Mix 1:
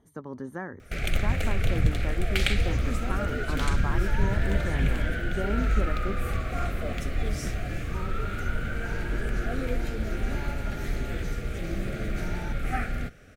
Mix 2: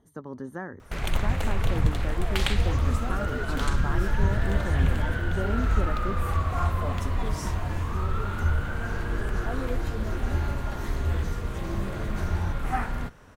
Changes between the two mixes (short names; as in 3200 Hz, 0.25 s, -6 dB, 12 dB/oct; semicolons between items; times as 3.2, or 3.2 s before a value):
first sound: remove Butterworth band-stop 970 Hz, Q 1.9; second sound: remove HPF 120 Hz 24 dB/oct; master: add bell 2300 Hz -7 dB 0.24 oct